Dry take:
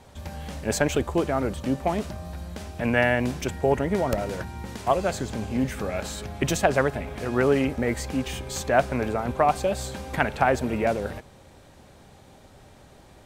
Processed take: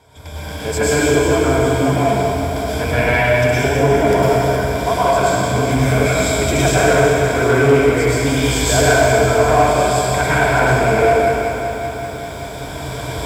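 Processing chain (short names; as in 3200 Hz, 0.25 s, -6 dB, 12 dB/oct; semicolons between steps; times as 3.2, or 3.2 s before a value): recorder AGC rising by 7.9 dB/s; ripple EQ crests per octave 1.7, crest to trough 11 dB; flutter echo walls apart 11.2 m, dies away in 0.24 s; reverb RT60 2.2 s, pre-delay 96 ms, DRR -9.5 dB; soft clip -3 dBFS, distortion -20 dB; HPF 60 Hz; bell 200 Hz -8.5 dB 0.61 oct; lo-fi delay 0.192 s, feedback 80%, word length 7-bit, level -10 dB; gain -1 dB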